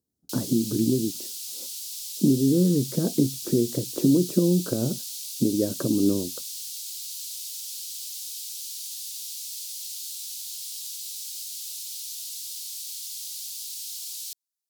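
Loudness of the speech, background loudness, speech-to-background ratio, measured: −24.5 LKFS, −33.0 LKFS, 8.5 dB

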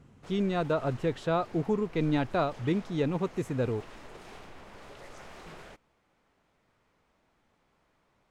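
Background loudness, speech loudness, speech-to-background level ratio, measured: −49.5 LKFS, −30.5 LKFS, 19.0 dB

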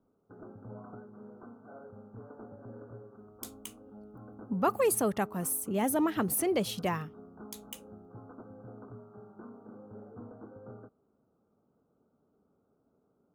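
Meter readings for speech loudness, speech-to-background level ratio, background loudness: −30.0 LKFS, 20.0 dB, −50.0 LKFS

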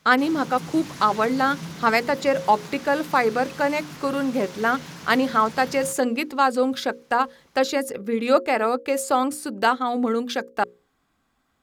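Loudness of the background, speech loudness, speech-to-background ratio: −38.5 LKFS, −23.0 LKFS, 15.5 dB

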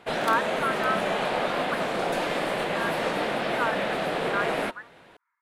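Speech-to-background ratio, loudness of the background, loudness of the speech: −4.5 dB, −27.5 LKFS, −32.0 LKFS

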